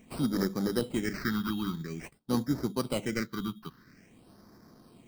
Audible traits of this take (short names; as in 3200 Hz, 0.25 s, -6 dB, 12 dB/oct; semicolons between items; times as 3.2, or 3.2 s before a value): aliases and images of a low sample rate 3500 Hz, jitter 0%; phasing stages 6, 0.49 Hz, lowest notch 560–2700 Hz